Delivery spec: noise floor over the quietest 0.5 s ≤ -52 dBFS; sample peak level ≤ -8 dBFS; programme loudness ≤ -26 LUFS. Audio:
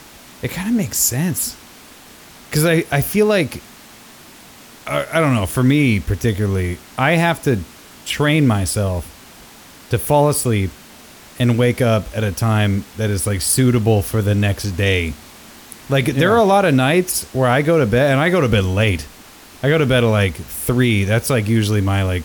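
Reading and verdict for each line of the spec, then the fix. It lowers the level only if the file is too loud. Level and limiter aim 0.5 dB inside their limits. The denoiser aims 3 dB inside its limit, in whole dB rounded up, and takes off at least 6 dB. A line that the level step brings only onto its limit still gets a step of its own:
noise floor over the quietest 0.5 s -42 dBFS: fail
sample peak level -4.0 dBFS: fail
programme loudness -17.0 LUFS: fail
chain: denoiser 6 dB, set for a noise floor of -42 dBFS; gain -9.5 dB

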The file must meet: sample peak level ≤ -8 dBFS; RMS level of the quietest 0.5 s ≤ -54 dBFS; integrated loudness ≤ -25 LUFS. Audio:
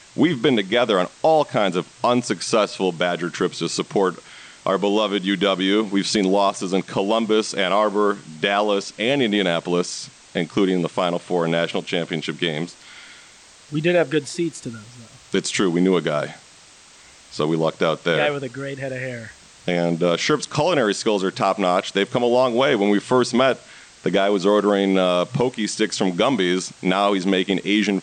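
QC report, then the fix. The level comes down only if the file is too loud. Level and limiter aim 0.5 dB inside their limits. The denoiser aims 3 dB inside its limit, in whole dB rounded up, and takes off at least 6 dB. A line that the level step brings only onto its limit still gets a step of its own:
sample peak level -6.5 dBFS: fail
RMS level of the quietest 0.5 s -48 dBFS: fail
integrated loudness -20.5 LUFS: fail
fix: denoiser 6 dB, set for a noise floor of -48 dBFS; gain -5 dB

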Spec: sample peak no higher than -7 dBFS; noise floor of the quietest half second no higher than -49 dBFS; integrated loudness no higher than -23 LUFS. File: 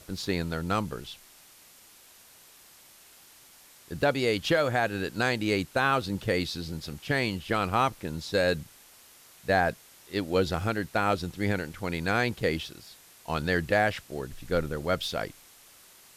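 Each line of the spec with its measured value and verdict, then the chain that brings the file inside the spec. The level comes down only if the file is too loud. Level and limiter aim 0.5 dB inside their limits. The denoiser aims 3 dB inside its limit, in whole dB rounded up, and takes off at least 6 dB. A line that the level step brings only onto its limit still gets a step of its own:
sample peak -13.0 dBFS: OK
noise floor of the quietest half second -55 dBFS: OK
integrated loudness -28.5 LUFS: OK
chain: none

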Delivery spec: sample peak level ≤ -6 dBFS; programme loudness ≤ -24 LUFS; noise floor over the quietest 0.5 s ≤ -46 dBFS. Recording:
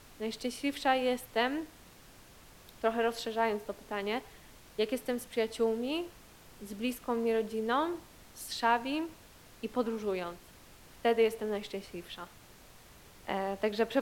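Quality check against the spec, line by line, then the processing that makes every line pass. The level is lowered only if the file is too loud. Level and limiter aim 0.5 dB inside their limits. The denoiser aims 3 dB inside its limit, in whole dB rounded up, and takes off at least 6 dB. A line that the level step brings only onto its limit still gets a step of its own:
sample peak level -13.5 dBFS: OK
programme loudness -33.5 LUFS: OK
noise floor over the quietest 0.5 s -56 dBFS: OK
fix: none

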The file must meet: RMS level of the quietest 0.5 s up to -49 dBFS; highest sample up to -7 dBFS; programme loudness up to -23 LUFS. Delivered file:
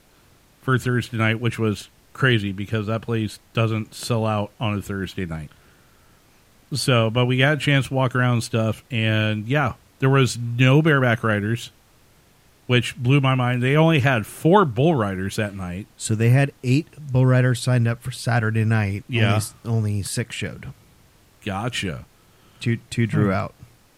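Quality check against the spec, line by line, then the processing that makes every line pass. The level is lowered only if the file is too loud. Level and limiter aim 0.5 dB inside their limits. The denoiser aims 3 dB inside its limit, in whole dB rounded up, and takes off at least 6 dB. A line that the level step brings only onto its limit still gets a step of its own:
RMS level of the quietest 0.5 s -55 dBFS: OK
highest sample -2.0 dBFS: fail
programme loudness -21.5 LUFS: fail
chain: gain -2 dB; limiter -7.5 dBFS

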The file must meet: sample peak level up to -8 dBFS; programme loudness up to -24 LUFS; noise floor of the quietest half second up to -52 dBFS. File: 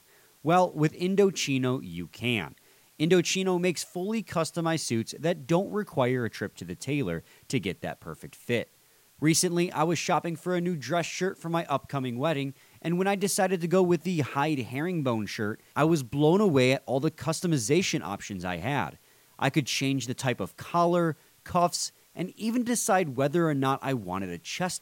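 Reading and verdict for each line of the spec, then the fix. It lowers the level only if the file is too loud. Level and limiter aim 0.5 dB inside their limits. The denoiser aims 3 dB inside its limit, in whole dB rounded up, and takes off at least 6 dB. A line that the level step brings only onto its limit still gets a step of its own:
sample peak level -9.0 dBFS: OK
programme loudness -28.0 LUFS: OK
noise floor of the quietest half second -61 dBFS: OK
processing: none

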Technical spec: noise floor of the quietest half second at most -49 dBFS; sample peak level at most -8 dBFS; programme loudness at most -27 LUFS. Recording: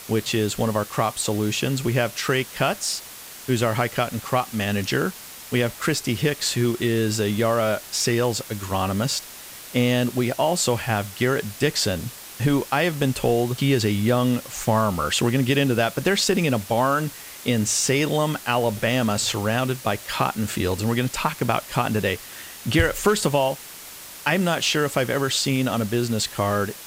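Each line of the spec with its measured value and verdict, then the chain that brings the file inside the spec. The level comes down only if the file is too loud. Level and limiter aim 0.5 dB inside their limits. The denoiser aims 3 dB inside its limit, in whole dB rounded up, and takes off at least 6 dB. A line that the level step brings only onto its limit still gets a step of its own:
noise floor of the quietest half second -40 dBFS: fail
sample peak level -5.5 dBFS: fail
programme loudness -22.5 LUFS: fail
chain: denoiser 7 dB, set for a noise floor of -40 dBFS; gain -5 dB

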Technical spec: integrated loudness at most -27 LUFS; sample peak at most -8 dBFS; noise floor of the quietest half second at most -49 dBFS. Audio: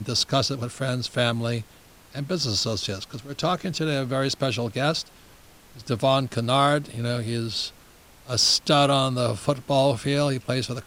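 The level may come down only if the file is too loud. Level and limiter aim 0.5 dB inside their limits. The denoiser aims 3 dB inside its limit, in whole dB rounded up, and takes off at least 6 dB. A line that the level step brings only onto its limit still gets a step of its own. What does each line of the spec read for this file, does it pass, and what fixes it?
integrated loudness -24.0 LUFS: fail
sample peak -5.0 dBFS: fail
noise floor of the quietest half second -51 dBFS: OK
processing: gain -3.5 dB

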